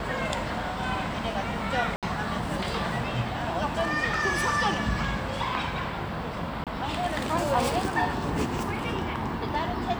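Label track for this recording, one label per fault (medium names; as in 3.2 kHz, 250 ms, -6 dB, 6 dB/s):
1.960000	2.030000	dropout 67 ms
6.640000	6.670000	dropout 27 ms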